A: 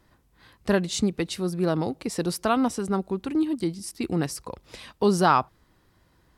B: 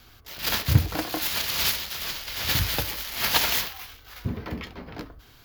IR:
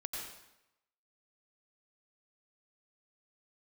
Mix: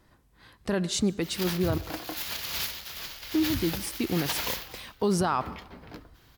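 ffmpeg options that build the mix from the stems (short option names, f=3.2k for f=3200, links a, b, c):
-filter_complex "[0:a]volume=-0.5dB,asplit=3[a][b][c];[a]atrim=end=1.78,asetpts=PTS-STARTPTS,afade=t=out:st=1.776:d=0.004:c=hsin[d];[b]atrim=start=1.78:end=3.34,asetpts=PTS-STARTPTS,volume=0[e];[c]atrim=start=3.34,asetpts=PTS-STARTPTS,afade=t=in:d=0.004:c=hsin[f];[d][e][f]concat=n=3:v=0:a=1,asplit=2[g][h];[h]volume=-20dB[i];[1:a]adelay=950,volume=-7dB[j];[2:a]atrim=start_sample=2205[k];[i][k]afir=irnorm=-1:irlink=0[l];[g][j][l]amix=inputs=3:normalize=0,alimiter=limit=-17dB:level=0:latency=1:release=51"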